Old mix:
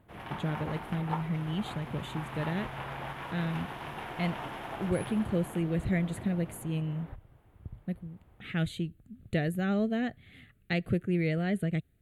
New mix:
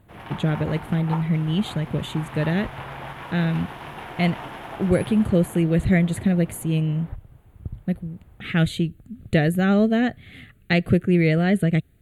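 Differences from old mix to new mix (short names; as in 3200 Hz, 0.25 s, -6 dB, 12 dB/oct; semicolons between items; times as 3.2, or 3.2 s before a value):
speech +10.5 dB; background +3.5 dB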